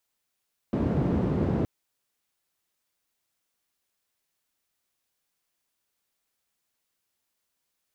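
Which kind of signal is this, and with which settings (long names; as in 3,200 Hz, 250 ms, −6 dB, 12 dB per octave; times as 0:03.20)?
band-limited noise 88–250 Hz, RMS −25.5 dBFS 0.92 s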